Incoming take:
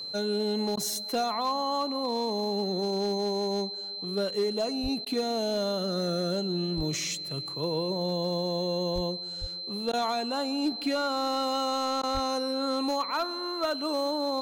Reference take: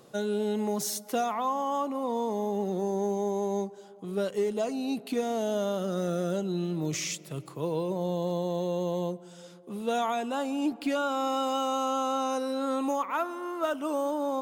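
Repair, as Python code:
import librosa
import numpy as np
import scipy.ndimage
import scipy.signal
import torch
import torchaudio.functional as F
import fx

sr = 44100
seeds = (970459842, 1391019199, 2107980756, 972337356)

y = fx.fix_declip(x, sr, threshold_db=-21.0)
y = fx.notch(y, sr, hz=4100.0, q=30.0)
y = fx.fix_deplosive(y, sr, at_s=(4.82, 6.76, 8.94, 9.4, 12.13))
y = fx.fix_interpolate(y, sr, at_s=(0.76, 5.05, 9.92, 12.02), length_ms=11.0)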